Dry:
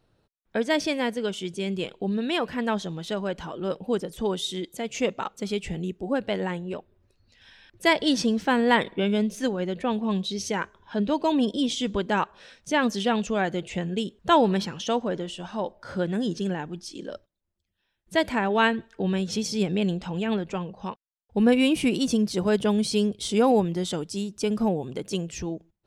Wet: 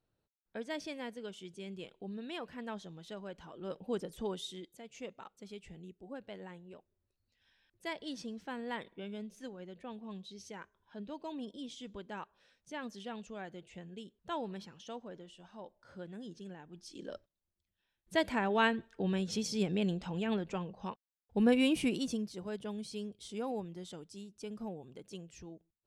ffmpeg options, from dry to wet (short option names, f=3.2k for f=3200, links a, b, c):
-af "volume=3dB,afade=t=in:st=3.46:d=0.6:silence=0.446684,afade=t=out:st=4.06:d=0.75:silence=0.298538,afade=t=in:st=16.66:d=0.46:silence=0.251189,afade=t=out:st=21.77:d=0.58:silence=0.298538"